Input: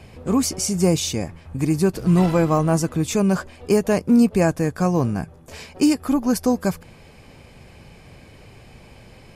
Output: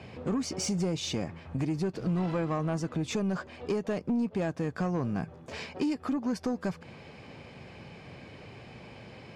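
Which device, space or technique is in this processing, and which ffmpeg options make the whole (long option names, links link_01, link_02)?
AM radio: -af "highpass=110,lowpass=4500,acompressor=threshold=-26dB:ratio=4,asoftclip=type=tanh:threshold=-22.5dB"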